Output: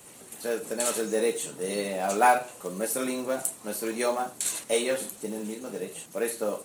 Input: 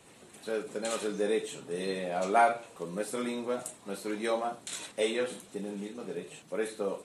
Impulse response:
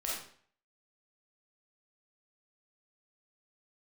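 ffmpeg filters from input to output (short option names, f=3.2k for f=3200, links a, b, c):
-af "asetrate=46746,aresample=44100,aexciter=amount=2.6:drive=5.9:freq=5.7k,acrusher=bits=6:mode=log:mix=0:aa=0.000001,volume=3.5dB"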